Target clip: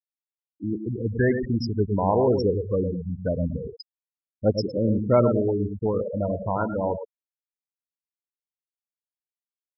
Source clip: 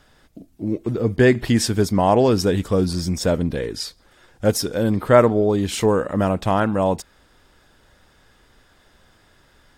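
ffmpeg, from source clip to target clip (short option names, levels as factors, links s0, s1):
-af "aphaser=in_gain=1:out_gain=1:delay=2.2:decay=0.27:speed=0.22:type=sinusoidal,aecho=1:1:108|216|324|432:0.501|0.185|0.0686|0.0254,afftfilt=real='re*gte(hypot(re,im),0.282)':imag='im*gte(hypot(re,im),0.282)':win_size=1024:overlap=0.75,volume=0.501"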